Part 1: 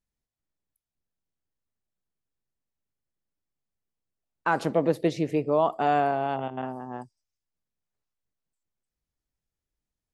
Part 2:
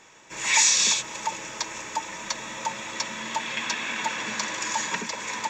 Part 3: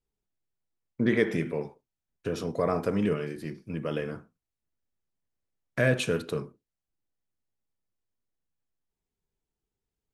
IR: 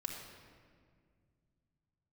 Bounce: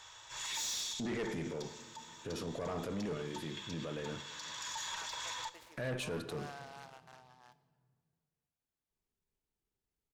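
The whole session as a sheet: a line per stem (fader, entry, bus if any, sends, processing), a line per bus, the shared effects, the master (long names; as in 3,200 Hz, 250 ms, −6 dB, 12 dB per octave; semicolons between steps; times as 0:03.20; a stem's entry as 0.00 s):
−11.5 dB, 0.50 s, bus A, send −12.5 dB, high-pass filter 1,400 Hz 12 dB per octave; short delay modulated by noise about 3,500 Hz, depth 0.067 ms
+3.0 dB, 0.00 s, bus A, send −21 dB, drawn EQ curve 110 Hz 0 dB, 200 Hz −28 dB, 920 Hz −4 dB, 1,500 Hz −3 dB, 2,400 Hz −10 dB, 3,400 Hz +6 dB, 6,300 Hz +1 dB, 13,000 Hz +8 dB; automatic ducking −22 dB, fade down 0.20 s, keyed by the third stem
−2.5 dB, 0.00 s, no bus, send −17.5 dB, no processing
bus A: 0.0 dB, high-shelf EQ 6,700 Hz −11.5 dB; downward compressor 1.5 to 1, threshold −48 dBFS, peak gain reduction 11.5 dB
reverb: on, RT60 2.0 s, pre-delay 3 ms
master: transient designer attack −5 dB, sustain 0 dB; tube saturation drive 27 dB, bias 0.35; brickwall limiter −31.5 dBFS, peak gain reduction 6.5 dB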